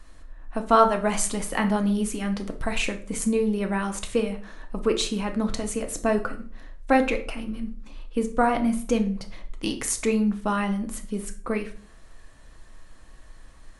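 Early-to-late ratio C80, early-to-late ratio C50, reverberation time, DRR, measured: 17.5 dB, 12.0 dB, 0.45 s, 5.0 dB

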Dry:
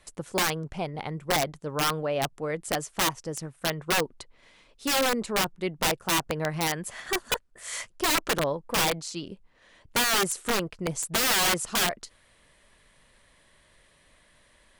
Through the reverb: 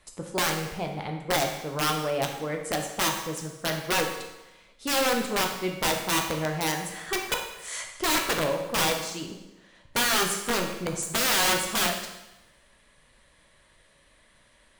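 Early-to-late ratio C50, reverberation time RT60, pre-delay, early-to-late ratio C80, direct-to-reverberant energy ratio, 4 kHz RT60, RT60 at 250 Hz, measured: 5.5 dB, 0.95 s, 11 ms, 8.0 dB, 2.0 dB, 0.95 s, 0.95 s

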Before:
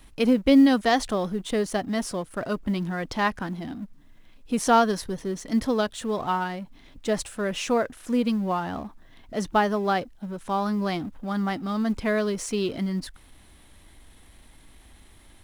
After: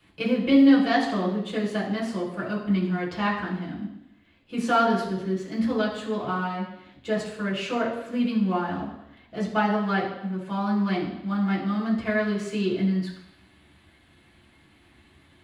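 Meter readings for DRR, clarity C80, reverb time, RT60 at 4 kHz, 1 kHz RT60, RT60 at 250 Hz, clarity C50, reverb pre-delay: -6.5 dB, 8.5 dB, 0.85 s, 0.90 s, 0.85 s, 0.80 s, 5.5 dB, 3 ms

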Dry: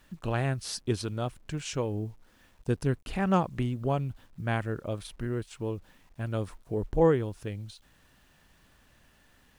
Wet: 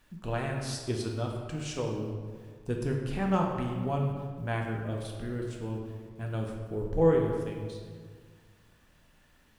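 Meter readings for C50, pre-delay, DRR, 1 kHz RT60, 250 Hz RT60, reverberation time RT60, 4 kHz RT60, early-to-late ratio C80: 3.5 dB, 3 ms, 0.0 dB, 1.6 s, 2.0 s, 1.8 s, 1.1 s, 4.5 dB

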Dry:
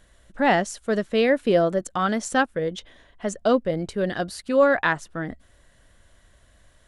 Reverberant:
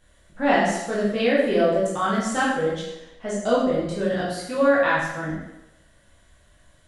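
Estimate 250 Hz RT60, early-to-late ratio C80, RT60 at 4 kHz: 0.80 s, 4.5 dB, 0.85 s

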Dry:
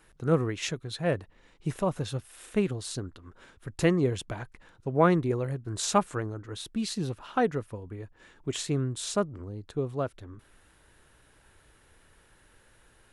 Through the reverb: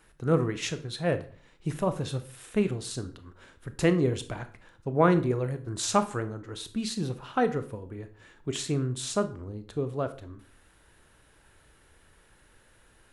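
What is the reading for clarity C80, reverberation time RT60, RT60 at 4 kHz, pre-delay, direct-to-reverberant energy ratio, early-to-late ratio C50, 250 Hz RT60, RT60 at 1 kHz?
18.5 dB, 0.45 s, 0.35 s, 22 ms, 10.0 dB, 14.5 dB, 0.50 s, 0.45 s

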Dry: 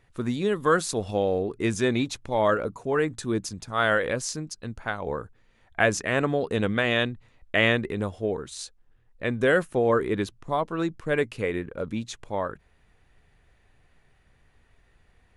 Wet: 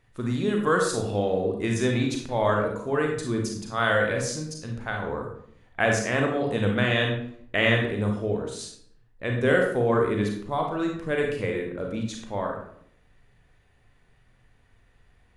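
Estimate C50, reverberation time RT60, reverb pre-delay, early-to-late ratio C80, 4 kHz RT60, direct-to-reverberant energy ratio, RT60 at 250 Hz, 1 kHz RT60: 3.5 dB, 0.65 s, 31 ms, 7.5 dB, 0.45 s, 1.0 dB, 0.80 s, 0.60 s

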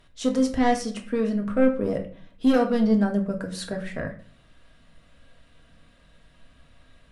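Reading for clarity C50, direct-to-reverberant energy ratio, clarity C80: 11.0 dB, 2.0 dB, 15.5 dB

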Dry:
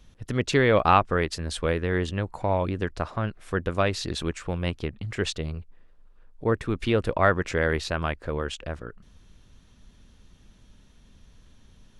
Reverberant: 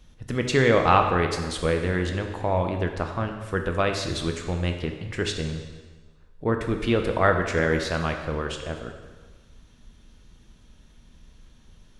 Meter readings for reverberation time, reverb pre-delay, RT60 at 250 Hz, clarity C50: 1.4 s, 4 ms, 1.4 s, 6.5 dB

